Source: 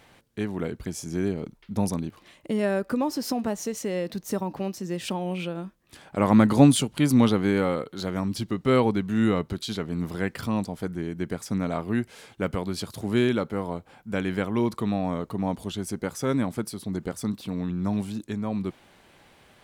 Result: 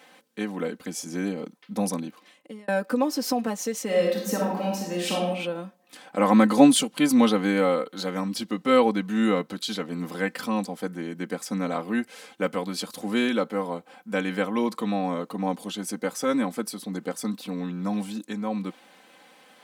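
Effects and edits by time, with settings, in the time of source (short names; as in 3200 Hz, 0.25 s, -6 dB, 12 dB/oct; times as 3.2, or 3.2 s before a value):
2.01–2.68 fade out
3.85–5.22 reverb throw, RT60 0.81 s, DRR -2 dB
whole clip: HPF 170 Hz 24 dB/oct; bell 240 Hz -5 dB 0.9 oct; comb 3.9 ms, depth 77%; gain +1 dB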